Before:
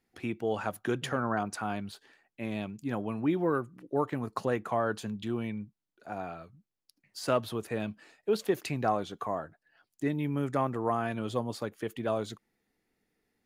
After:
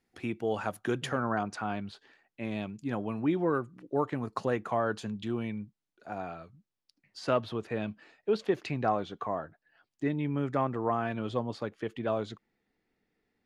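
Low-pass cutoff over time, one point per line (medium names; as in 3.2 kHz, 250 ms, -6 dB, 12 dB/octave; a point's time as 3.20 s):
1.03 s 11 kHz
1.76 s 4.3 kHz
2.60 s 7.5 kHz
6.39 s 7.5 kHz
7.42 s 4.3 kHz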